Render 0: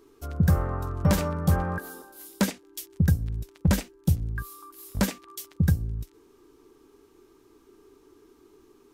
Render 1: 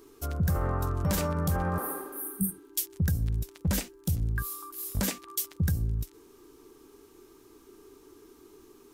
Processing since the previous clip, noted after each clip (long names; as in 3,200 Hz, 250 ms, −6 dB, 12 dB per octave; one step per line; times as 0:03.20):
healed spectral selection 0:01.78–0:02.67, 210–8,400 Hz both
brickwall limiter −22 dBFS, peak gain reduction 10.5 dB
high-shelf EQ 6,100 Hz +8 dB
level +2 dB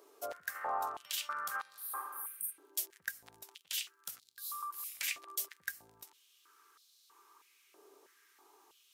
high-pass on a step sequencer 3.1 Hz 610–4,000 Hz
level −6 dB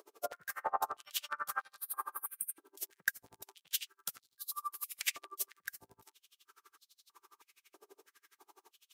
tremolo with a sine in dB 12 Hz, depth 34 dB
level +7 dB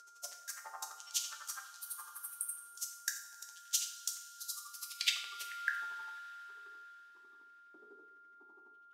steady tone 1,400 Hz −45 dBFS
band-pass filter sweep 6,300 Hz → 230 Hz, 0:04.70–0:07.19
coupled-rooms reverb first 0.56 s, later 4.3 s, from −18 dB, DRR 3 dB
level +8.5 dB